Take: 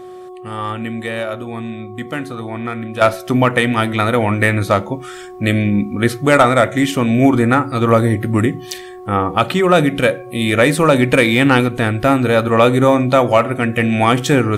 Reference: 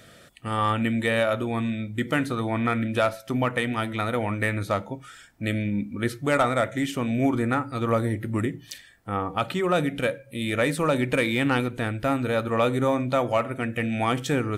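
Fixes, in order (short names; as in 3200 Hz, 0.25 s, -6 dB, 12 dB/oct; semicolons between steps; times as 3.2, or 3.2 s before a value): de-hum 366.4 Hz, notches 3; gain 0 dB, from 3.01 s -11 dB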